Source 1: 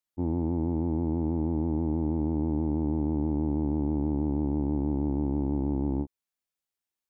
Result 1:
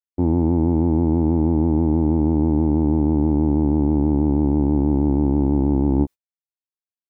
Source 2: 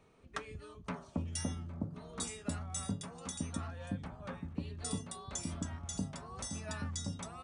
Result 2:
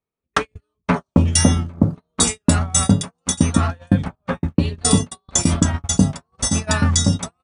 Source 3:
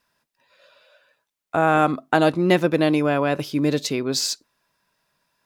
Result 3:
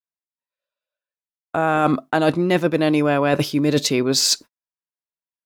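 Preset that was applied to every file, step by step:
noise gate −41 dBFS, range −47 dB
reversed playback
downward compressor 6 to 1, threshold −28 dBFS
reversed playback
loudness normalisation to −19 LKFS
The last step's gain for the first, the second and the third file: +14.5, +23.5, +12.5 decibels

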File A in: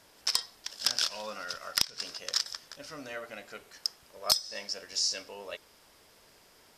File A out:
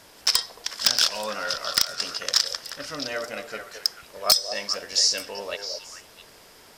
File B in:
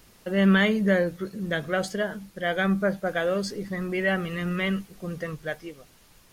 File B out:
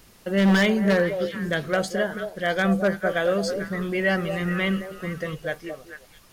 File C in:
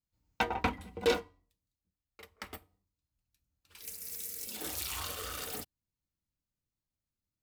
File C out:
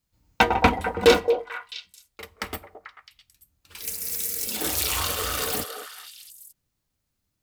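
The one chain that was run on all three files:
wave folding −15 dBFS
echo through a band-pass that steps 220 ms, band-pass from 560 Hz, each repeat 1.4 octaves, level −5 dB
loudness normalisation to −24 LKFS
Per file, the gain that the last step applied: +9.0, +2.0, +12.0 decibels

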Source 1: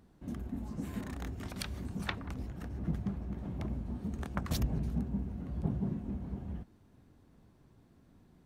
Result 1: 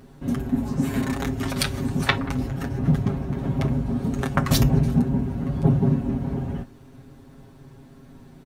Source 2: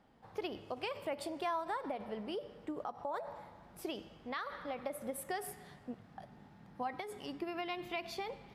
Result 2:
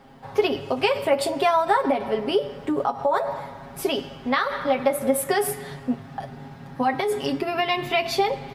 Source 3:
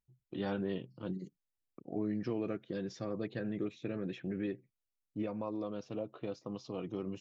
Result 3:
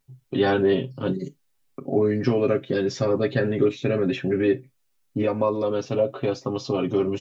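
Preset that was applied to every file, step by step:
comb filter 7.4 ms, depth 76%
reverb whose tail is shaped and stops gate 80 ms falling, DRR 11 dB
loudness normalisation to −24 LKFS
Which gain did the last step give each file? +13.5, +15.5, +14.5 decibels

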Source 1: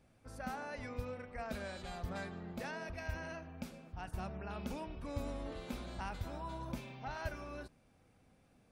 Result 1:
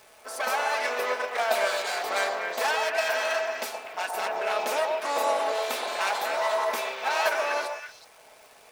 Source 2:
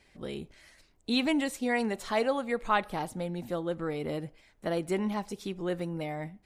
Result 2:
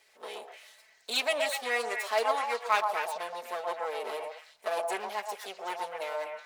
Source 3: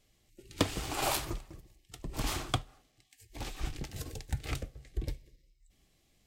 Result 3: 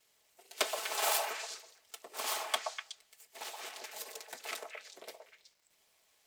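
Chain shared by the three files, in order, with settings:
lower of the sound and its delayed copy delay 4.6 ms
high-pass filter 480 Hz 24 dB per octave
high-shelf EQ 8,800 Hz +4.5 dB
surface crackle 530 per second −64 dBFS
echo through a band-pass that steps 123 ms, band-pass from 750 Hz, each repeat 1.4 octaves, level −1 dB
normalise the peak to −12 dBFS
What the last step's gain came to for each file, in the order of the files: +19.5, +1.5, +1.0 decibels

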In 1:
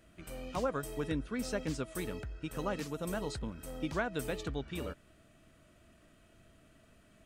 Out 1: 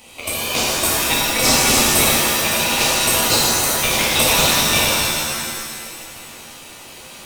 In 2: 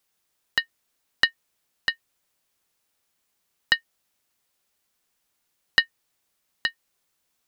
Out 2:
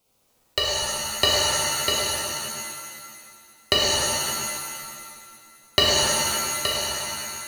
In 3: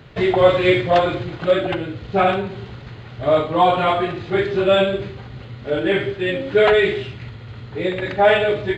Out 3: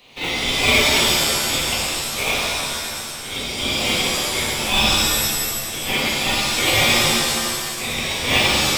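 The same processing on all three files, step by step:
Butterworth high-pass 2,200 Hz 48 dB per octave
in parallel at −3.5 dB: decimation without filtering 25×
on the sum: reverb with rising layers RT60 2 s, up +7 semitones, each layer −2 dB, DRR −5 dB
normalise the peak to −2 dBFS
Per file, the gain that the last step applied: +24.5, +1.5, +3.0 decibels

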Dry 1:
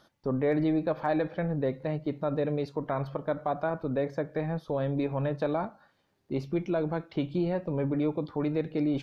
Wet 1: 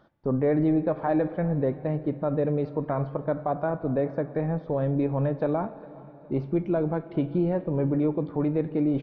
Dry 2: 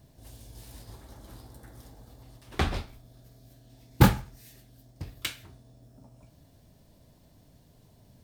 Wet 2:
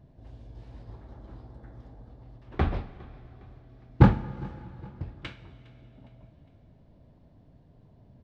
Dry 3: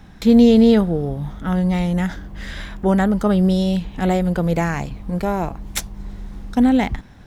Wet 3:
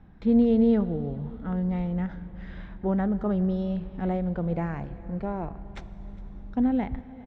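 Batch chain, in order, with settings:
hard clipping −3.5 dBFS
head-to-tape spacing loss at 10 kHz 40 dB
repeating echo 409 ms, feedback 47%, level −23 dB
dense smooth reverb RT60 3.5 s, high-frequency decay 1×, DRR 15 dB
loudness normalisation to −27 LKFS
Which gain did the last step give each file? +5.0, +3.0, −8.0 decibels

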